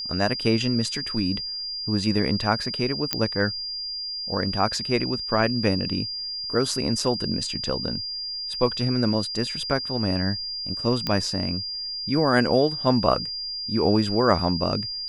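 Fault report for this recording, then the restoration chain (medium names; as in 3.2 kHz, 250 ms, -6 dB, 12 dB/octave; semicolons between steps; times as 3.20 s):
whine 4.8 kHz -29 dBFS
3.13 s: pop -4 dBFS
11.07 s: pop -11 dBFS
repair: de-click; band-stop 4.8 kHz, Q 30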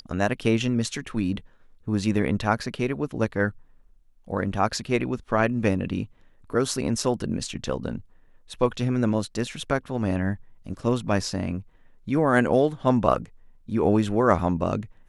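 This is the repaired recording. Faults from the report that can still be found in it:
nothing left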